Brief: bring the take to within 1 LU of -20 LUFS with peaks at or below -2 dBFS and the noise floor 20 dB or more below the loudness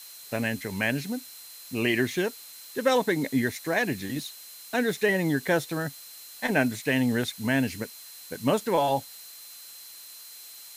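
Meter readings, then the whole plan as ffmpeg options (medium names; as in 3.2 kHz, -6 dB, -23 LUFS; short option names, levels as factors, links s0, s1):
steady tone 4.1 kHz; tone level -50 dBFS; noise floor -46 dBFS; noise floor target -48 dBFS; loudness -27.5 LUFS; peak level -10.5 dBFS; loudness target -20.0 LUFS
-> -af "bandreject=f=4100:w=30"
-af "afftdn=nr=6:nf=-46"
-af "volume=2.37"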